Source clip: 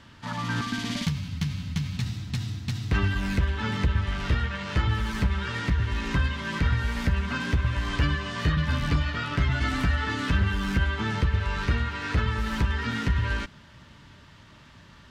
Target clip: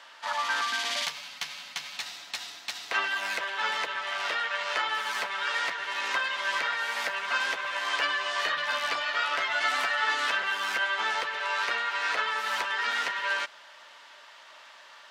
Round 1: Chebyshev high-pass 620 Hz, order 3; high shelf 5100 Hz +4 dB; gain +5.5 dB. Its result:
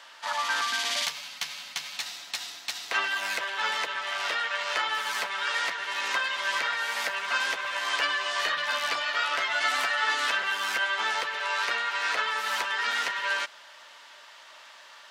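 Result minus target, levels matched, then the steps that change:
8000 Hz band +3.0 dB
change: high shelf 5100 Hz -2 dB

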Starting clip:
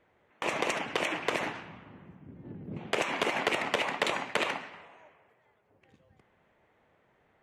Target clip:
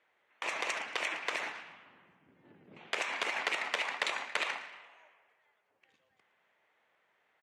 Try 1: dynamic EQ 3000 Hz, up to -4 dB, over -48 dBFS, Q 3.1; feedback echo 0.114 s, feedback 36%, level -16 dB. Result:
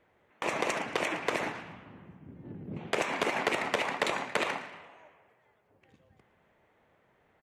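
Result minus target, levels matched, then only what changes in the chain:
4000 Hz band -2.5 dB
add after dynamic EQ: band-pass 3300 Hz, Q 0.5

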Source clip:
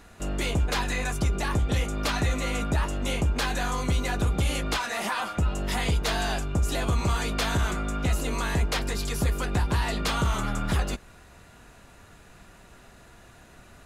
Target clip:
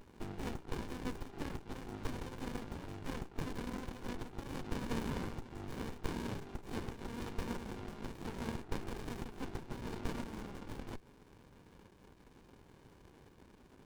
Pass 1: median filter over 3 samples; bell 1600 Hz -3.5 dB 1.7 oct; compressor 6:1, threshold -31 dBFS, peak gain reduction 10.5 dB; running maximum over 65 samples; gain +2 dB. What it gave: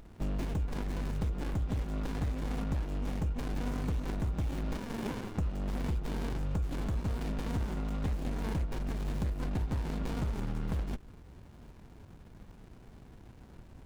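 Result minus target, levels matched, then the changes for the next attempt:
500 Hz band -5.5 dB
add after compressor: HPF 380 Hz 24 dB/oct

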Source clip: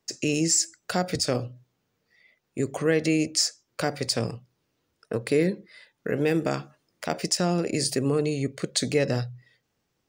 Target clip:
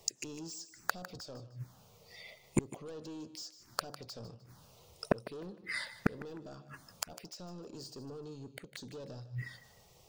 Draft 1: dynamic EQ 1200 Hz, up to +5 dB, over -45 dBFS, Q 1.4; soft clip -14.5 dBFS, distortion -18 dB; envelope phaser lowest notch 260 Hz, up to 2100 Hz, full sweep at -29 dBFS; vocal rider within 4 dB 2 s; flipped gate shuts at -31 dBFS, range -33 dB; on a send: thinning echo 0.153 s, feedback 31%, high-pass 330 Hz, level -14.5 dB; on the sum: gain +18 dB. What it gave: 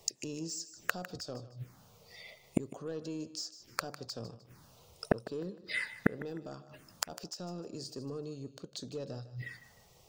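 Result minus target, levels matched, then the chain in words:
soft clip: distortion -11 dB
dynamic EQ 1200 Hz, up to +5 dB, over -45 dBFS, Q 1.4; soft clip -25.5 dBFS, distortion -7 dB; envelope phaser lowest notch 260 Hz, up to 2100 Hz, full sweep at -29 dBFS; vocal rider within 4 dB 2 s; flipped gate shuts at -31 dBFS, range -33 dB; on a send: thinning echo 0.153 s, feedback 31%, high-pass 330 Hz, level -14.5 dB; on the sum: gain +18 dB

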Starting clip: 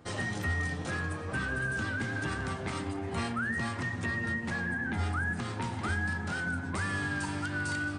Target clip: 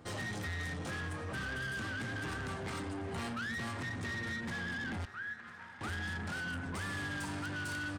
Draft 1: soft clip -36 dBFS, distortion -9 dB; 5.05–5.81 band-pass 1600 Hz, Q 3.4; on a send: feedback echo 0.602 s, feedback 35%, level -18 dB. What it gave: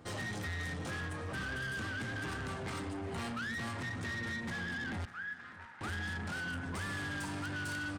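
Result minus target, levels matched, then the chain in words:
echo 0.397 s early
soft clip -36 dBFS, distortion -9 dB; 5.05–5.81 band-pass 1600 Hz, Q 3.4; on a send: feedback echo 0.999 s, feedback 35%, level -18 dB

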